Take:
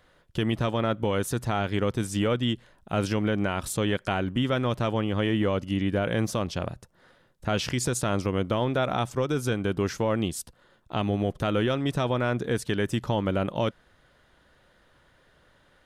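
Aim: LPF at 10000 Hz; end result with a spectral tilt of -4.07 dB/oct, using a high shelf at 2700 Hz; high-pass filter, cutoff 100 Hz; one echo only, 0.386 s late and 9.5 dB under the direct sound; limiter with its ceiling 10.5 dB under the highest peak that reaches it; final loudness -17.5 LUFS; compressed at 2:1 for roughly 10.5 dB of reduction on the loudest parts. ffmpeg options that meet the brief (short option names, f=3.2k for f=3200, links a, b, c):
-af "highpass=100,lowpass=10k,highshelf=f=2.7k:g=8.5,acompressor=threshold=-40dB:ratio=2,alimiter=level_in=4.5dB:limit=-24dB:level=0:latency=1,volume=-4.5dB,aecho=1:1:386:0.335,volume=23dB"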